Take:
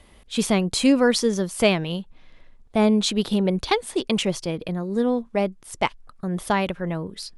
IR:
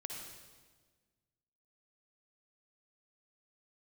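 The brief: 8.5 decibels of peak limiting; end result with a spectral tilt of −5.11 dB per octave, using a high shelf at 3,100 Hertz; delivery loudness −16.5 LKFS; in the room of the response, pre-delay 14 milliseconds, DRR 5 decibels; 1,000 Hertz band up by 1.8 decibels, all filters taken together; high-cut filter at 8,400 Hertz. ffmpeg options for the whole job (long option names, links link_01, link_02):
-filter_complex "[0:a]lowpass=8400,equalizer=frequency=1000:width_type=o:gain=3,highshelf=frequency=3100:gain=-7.5,alimiter=limit=-13dB:level=0:latency=1,asplit=2[link_01][link_02];[1:a]atrim=start_sample=2205,adelay=14[link_03];[link_02][link_03]afir=irnorm=-1:irlink=0,volume=-3.5dB[link_04];[link_01][link_04]amix=inputs=2:normalize=0,volume=7.5dB"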